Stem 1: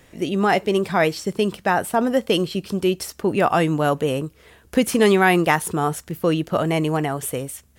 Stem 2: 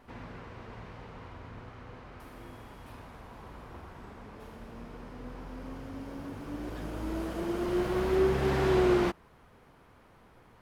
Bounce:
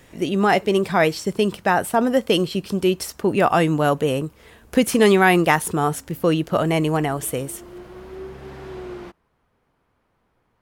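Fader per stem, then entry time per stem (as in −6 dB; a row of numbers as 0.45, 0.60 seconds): +1.0, −10.0 decibels; 0.00, 0.00 seconds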